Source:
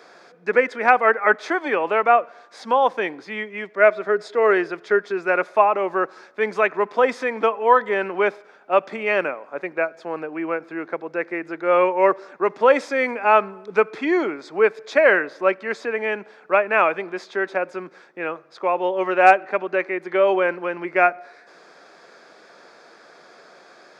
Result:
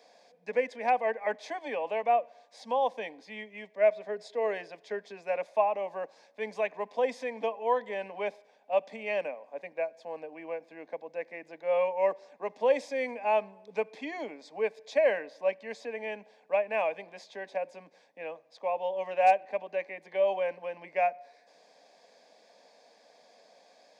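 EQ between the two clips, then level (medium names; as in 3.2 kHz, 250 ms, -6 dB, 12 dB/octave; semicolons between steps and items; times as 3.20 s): high-pass 240 Hz 12 dB/octave; static phaser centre 360 Hz, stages 6; -7.5 dB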